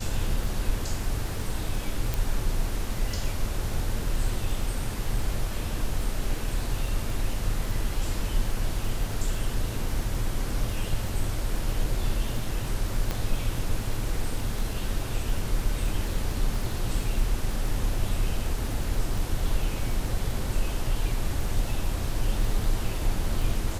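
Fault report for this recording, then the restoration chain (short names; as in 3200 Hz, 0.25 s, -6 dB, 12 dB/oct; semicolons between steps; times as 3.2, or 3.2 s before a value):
crackle 23/s -31 dBFS
2.14 pop
13.11 pop -14 dBFS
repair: de-click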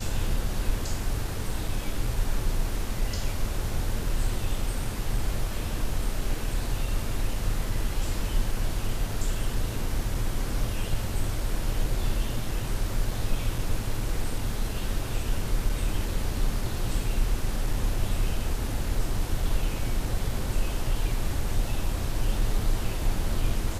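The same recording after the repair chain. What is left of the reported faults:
none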